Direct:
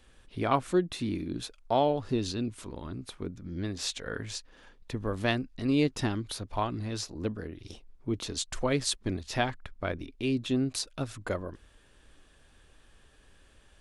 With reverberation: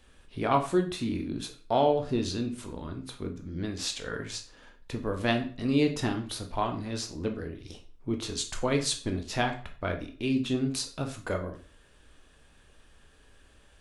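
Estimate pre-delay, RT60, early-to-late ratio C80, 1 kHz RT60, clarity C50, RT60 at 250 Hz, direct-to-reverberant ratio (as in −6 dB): 12 ms, 0.40 s, 15.5 dB, 0.40 s, 11.0 dB, 0.45 s, 4.0 dB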